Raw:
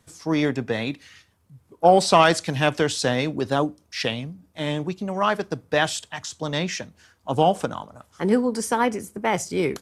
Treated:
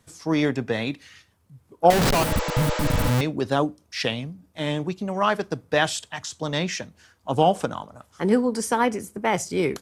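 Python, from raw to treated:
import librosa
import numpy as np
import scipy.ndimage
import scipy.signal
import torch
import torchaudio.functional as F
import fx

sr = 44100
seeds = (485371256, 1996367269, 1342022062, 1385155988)

y = fx.schmitt(x, sr, flips_db=-20.5, at=(1.9, 3.21))
y = fx.spec_repair(y, sr, seeds[0], start_s=2.26, length_s=0.82, low_hz=310.0, high_hz=7900.0, source='after')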